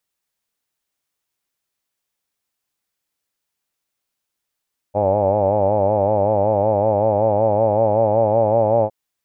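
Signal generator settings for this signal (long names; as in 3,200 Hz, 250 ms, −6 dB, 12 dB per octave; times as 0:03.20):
vowel by formant synthesis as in hawed, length 3.96 s, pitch 99.4 Hz, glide +2 semitones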